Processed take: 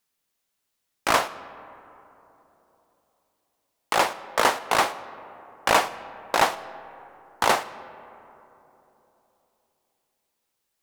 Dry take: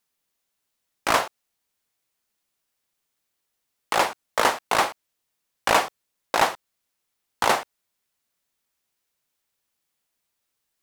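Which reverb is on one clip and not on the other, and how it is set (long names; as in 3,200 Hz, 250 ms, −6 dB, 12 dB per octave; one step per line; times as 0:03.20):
comb and all-pass reverb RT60 3.5 s, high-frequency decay 0.35×, pre-delay 50 ms, DRR 16 dB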